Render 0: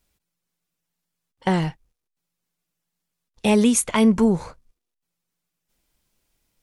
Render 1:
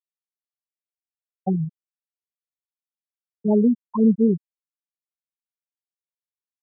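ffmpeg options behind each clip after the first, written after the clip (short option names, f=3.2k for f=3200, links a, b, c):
-af "afftfilt=real='re*gte(hypot(re,im),0.562)':imag='im*gte(hypot(re,im),0.562)':win_size=1024:overlap=0.75"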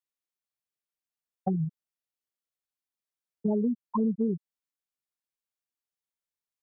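-af "acompressor=threshold=-25dB:ratio=5"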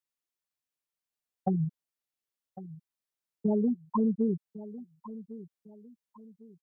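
-af "aecho=1:1:1103|2206|3309:0.158|0.0523|0.0173"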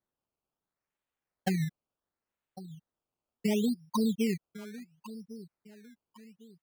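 -af "acrusher=samples=16:mix=1:aa=0.000001:lfo=1:lforange=16:lforate=0.71,volume=-1.5dB"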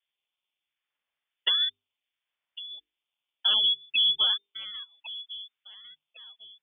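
-af "lowpass=f=3.1k:t=q:w=0.5098,lowpass=f=3.1k:t=q:w=0.6013,lowpass=f=3.1k:t=q:w=0.9,lowpass=f=3.1k:t=q:w=2.563,afreqshift=-3600,bandreject=f=50:t=h:w=6,bandreject=f=100:t=h:w=6,bandreject=f=150:t=h:w=6,bandreject=f=200:t=h:w=6,bandreject=f=250:t=h:w=6,bandreject=f=300:t=h:w=6,bandreject=f=350:t=h:w=6,bandreject=f=400:t=h:w=6,bandreject=f=450:t=h:w=6,volume=4.5dB"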